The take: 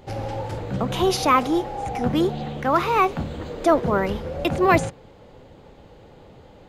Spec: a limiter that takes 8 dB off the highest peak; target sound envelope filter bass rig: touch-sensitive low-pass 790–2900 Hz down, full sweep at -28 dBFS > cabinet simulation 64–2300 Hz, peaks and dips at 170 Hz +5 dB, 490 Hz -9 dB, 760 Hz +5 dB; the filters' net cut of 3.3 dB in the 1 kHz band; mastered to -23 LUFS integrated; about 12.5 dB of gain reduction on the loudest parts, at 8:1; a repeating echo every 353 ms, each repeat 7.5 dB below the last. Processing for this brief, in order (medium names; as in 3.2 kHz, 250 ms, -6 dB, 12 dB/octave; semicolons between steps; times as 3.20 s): peaking EQ 1 kHz -7 dB; compression 8:1, threshold -28 dBFS; peak limiter -24.5 dBFS; feedback delay 353 ms, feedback 42%, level -7.5 dB; touch-sensitive low-pass 790–2900 Hz down, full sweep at -28 dBFS; cabinet simulation 64–2300 Hz, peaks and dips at 170 Hz +5 dB, 490 Hz -9 dB, 760 Hz +5 dB; trim +6 dB